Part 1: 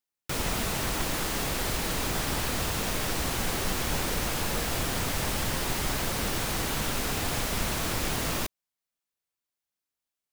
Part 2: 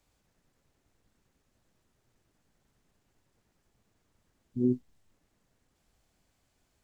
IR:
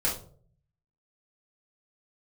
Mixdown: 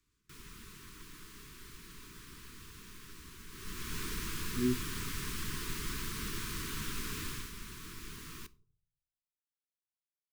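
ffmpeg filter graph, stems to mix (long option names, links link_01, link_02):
-filter_complex "[0:a]volume=-10dB,afade=type=in:start_time=3.49:duration=0.53:silence=0.237137,afade=type=out:start_time=7.24:duration=0.29:silence=0.398107,asplit=2[link_01][link_02];[link_02]volume=-22dB[link_03];[1:a]volume=-4.5dB[link_04];[2:a]atrim=start_sample=2205[link_05];[link_03][link_05]afir=irnorm=-1:irlink=0[link_06];[link_01][link_04][link_06]amix=inputs=3:normalize=0,asuperstop=centerf=660:order=12:qfactor=1.2"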